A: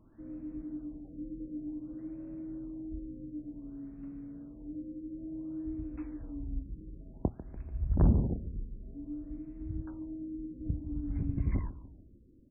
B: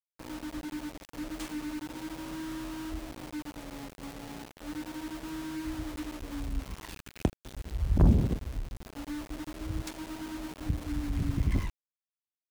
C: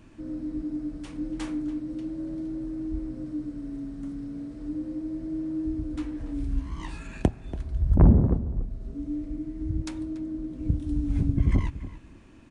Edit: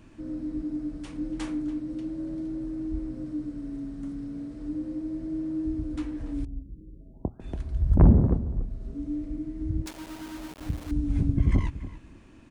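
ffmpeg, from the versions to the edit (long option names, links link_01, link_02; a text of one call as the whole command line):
ffmpeg -i take0.wav -i take1.wav -i take2.wav -filter_complex "[2:a]asplit=3[link_01][link_02][link_03];[link_01]atrim=end=6.452[link_04];[0:a]atrim=start=6.448:end=7.402[link_05];[link_02]atrim=start=7.398:end=9.862[link_06];[1:a]atrim=start=9.858:end=10.912[link_07];[link_03]atrim=start=10.908[link_08];[link_04][link_05]acrossfade=duration=0.004:curve1=hsin:curve2=hsin[link_09];[link_09][link_06]acrossfade=duration=0.004:curve1=hsin:curve2=hsin[link_10];[link_10][link_07]acrossfade=duration=0.004:curve1=hsin:curve2=hsin[link_11];[link_11][link_08]acrossfade=duration=0.004:curve1=hsin:curve2=hsin" out.wav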